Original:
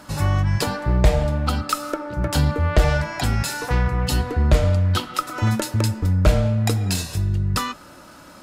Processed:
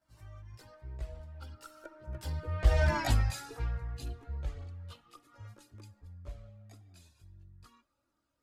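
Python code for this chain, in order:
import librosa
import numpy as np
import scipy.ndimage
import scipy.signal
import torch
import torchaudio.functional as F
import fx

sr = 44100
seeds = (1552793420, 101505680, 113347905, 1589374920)

y = fx.doppler_pass(x, sr, speed_mps=17, closest_m=1.4, pass_at_s=2.96)
y = fx.chorus_voices(y, sr, voices=6, hz=0.45, base_ms=16, depth_ms=1.9, mix_pct=70)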